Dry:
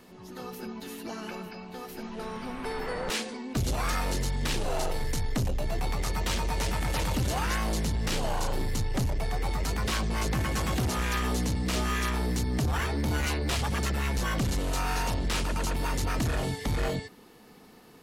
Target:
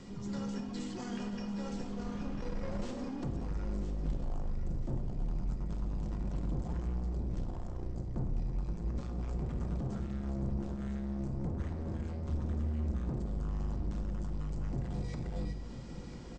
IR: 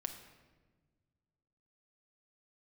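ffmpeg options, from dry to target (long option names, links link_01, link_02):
-filter_complex "[0:a]bass=frequency=250:gain=14,treble=frequency=4000:gain=5,acrossover=split=840|1300[link_01][link_02][link_03];[link_01]dynaudnorm=framelen=140:gausssize=31:maxgain=11.5dB[link_04];[link_03]alimiter=level_in=3.5dB:limit=-24dB:level=0:latency=1:release=257,volume=-3.5dB[link_05];[link_04][link_02][link_05]amix=inputs=3:normalize=0,acompressor=threshold=-34dB:ratio=2.5,aresample=16000,asoftclip=type=tanh:threshold=-32.5dB,aresample=44100,asetrate=48510,aresample=44100,aecho=1:1:996|1992|2988|3984:0.282|0.121|0.0521|0.0224[link_06];[1:a]atrim=start_sample=2205,afade=type=out:start_time=0.4:duration=0.01,atrim=end_sample=18081[link_07];[link_06][link_07]afir=irnorm=-1:irlink=0"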